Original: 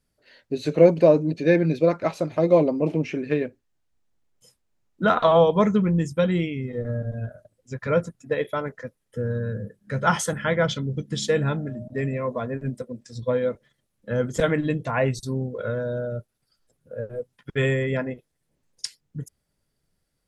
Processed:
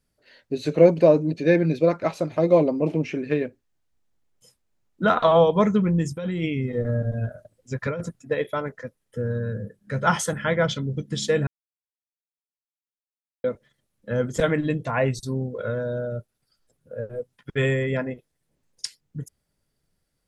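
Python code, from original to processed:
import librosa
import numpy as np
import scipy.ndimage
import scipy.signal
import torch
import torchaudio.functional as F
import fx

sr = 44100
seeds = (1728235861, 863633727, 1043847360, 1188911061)

y = fx.over_compress(x, sr, threshold_db=-26.0, ratio=-1.0, at=(6.05, 8.18), fade=0.02)
y = fx.edit(y, sr, fx.silence(start_s=11.47, length_s=1.97), tone=tone)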